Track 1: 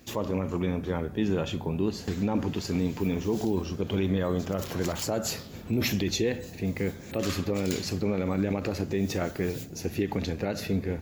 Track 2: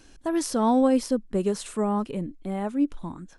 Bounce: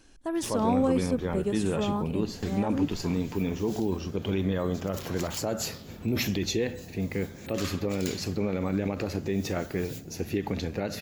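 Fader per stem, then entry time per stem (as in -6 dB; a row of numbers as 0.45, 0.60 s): -1.0, -4.5 dB; 0.35, 0.00 s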